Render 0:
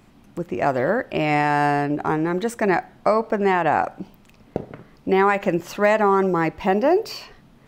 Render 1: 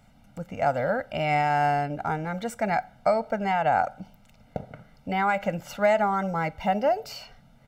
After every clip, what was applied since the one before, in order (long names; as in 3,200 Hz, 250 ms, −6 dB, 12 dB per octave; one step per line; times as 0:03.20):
comb filter 1.4 ms, depth 95%
level −7.5 dB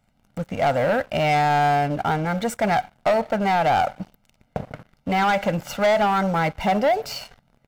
leveller curve on the samples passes 3
level −3.5 dB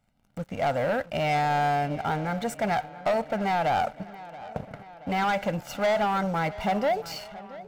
tape delay 678 ms, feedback 67%, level −16 dB, low-pass 4,700 Hz
level −5.5 dB